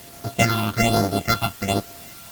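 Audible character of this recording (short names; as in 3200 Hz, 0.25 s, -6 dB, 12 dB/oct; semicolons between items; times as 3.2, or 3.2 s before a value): a buzz of ramps at a fixed pitch in blocks of 64 samples; phasing stages 6, 1.2 Hz, lowest notch 490–2700 Hz; a quantiser's noise floor 8-bit, dither triangular; Opus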